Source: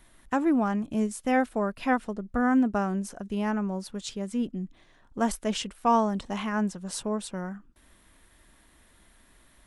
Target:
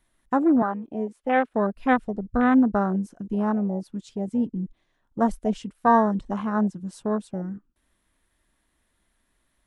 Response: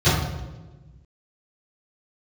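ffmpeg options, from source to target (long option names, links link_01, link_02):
-filter_complex "[0:a]afwtdn=0.0355,asettb=1/sr,asplit=3[link_01][link_02][link_03];[link_01]atrim=end=0.624[link_04];[link_02]atrim=start=0.62:end=1.54,asetpts=PTS-STARTPTS,afade=type=in:duration=0.004:curve=qsin,afade=type=out:start_time=0.916:duration=0.004:curve=qsin,acrossover=split=290 3500:gain=0.178 1 0.2[link_05][link_06][link_07];[link_05][link_06][link_07]amix=inputs=3:normalize=0[link_08];[link_03]atrim=start=1.536[link_09];[link_04][link_08]acrossfade=duration=0.004:curve1=hsin:curve2=qsin[link_10];[link_10][link_09]acrossfade=duration=0.004:curve1=qsin:curve2=hsin,volume=4.5dB"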